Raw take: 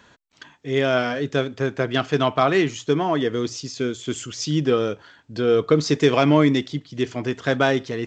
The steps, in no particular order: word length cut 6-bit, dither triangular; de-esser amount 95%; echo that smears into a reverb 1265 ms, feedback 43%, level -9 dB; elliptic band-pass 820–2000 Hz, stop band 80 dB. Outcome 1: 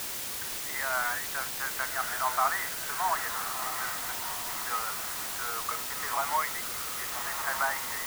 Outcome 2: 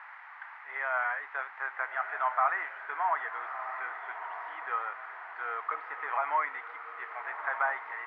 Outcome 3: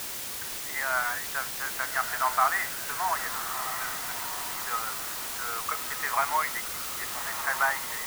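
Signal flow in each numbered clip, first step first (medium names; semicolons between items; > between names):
echo that smears into a reverb > de-esser > elliptic band-pass > word length cut; de-esser > echo that smears into a reverb > word length cut > elliptic band-pass; elliptic band-pass > de-esser > word length cut > echo that smears into a reverb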